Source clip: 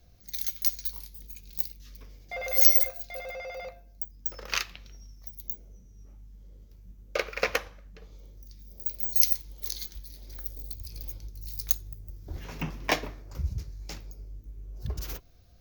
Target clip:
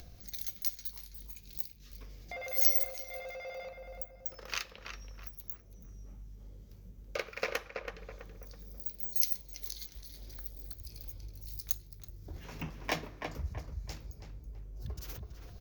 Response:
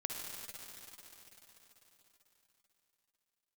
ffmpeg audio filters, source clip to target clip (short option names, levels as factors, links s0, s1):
-filter_complex "[0:a]acompressor=mode=upward:threshold=0.0282:ratio=2.5,asplit=2[s0][s1];[s1]adelay=328,lowpass=f=2000:p=1,volume=0.562,asplit=2[s2][s3];[s3]adelay=328,lowpass=f=2000:p=1,volume=0.4,asplit=2[s4][s5];[s5]adelay=328,lowpass=f=2000:p=1,volume=0.4,asplit=2[s6][s7];[s7]adelay=328,lowpass=f=2000:p=1,volume=0.4,asplit=2[s8][s9];[s9]adelay=328,lowpass=f=2000:p=1,volume=0.4[s10];[s0][s2][s4][s6][s8][s10]amix=inputs=6:normalize=0,volume=0.422"